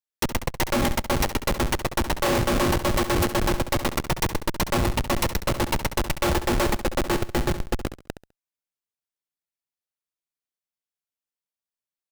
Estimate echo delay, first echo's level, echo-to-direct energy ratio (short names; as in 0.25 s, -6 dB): 68 ms, -11.5 dB, -11.0 dB